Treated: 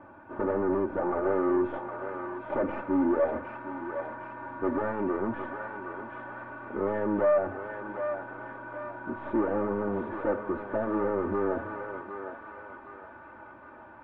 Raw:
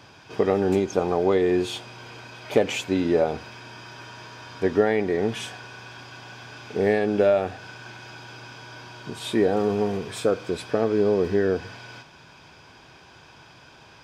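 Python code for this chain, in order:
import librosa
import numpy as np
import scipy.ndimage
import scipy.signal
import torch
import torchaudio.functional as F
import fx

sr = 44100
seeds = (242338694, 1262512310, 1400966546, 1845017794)

p1 = fx.tracing_dist(x, sr, depth_ms=0.31)
p2 = np.clip(10.0 ** (25.0 / 20.0) * p1, -1.0, 1.0) / 10.0 ** (25.0 / 20.0)
p3 = scipy.signal.sosfilt(scipy.signal.butter(4, 1400.0, 'lowpass', fs=sr, output='sos'), p2)
p4 = fx.low_shelf(p3, sr, hz=73.0, db=-11.5)
p5 = p4 + 0.85 * np.pad(p4, (int(3.4 * sr / 1000.0), 0))[:len(p4)]
y = p5 + fx.echo_thinned(p5, sr, ms=761, feedback_pct=63, hz=880.0, wet_db=-4.0, dry=0)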